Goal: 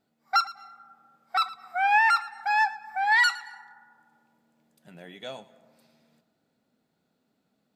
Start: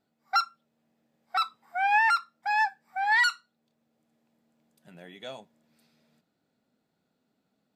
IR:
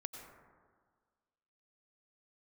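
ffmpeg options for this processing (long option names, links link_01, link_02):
-filter_complex "[0:a]asplit=2[link_01][link_02];[1:a]atrim=start_sample=2205,asetrate=39690,aresample=44100,adelay=112[link_03];[link_02][link_03]afir=irnorm=-1:irlink=0,volume=-14.5dB[link_04];[link_01][link_04]amix=inputs=2:normalize=0,volume=2dB"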